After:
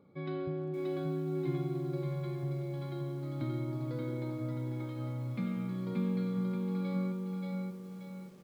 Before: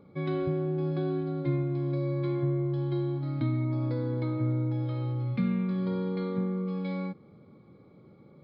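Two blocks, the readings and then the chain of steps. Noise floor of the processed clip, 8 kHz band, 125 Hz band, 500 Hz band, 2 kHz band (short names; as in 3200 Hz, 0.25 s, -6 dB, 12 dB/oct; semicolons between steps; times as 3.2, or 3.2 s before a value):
-45 dBFS, n/a, -6.5 dB, -5.5 dB, -4.5 dB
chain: HPF 100 Hz 6 dB/oct; echo 0.577 s -6 dB; lo-fi delay 0.582 s, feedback 35%, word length 9-bit, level -4.5 dB; gain -6.5 dB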